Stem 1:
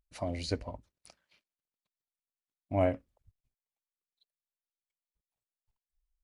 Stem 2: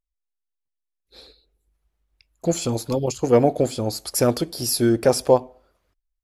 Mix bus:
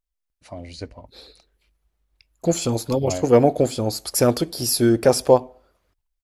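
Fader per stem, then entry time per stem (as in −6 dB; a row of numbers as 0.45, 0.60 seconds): −1.0, +1.5 decibels; 0.30, 0.00 seconds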